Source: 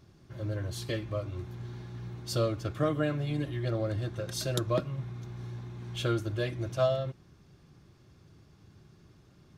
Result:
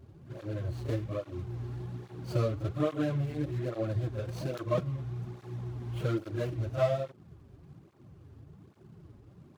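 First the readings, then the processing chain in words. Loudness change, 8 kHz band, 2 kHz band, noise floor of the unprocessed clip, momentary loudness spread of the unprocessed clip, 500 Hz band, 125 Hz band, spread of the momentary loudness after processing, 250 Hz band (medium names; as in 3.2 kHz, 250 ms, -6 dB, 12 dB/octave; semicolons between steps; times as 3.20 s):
-1.0 dB, under -10 dB, -5.0 dB, -60 dBFS, 12 LU, -1.0 dB, 0.0 dB, 19 LU, -0.5 dB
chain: median filter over 25 samples; in parallel at +2 dB: compression, threshold -41 dBFS, peak gain reduction 17.5 dB; on the sum: reverse echo 36 ms -10 dB; cancelling through-zero flanger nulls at 1.2 Hz, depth 6.6 ms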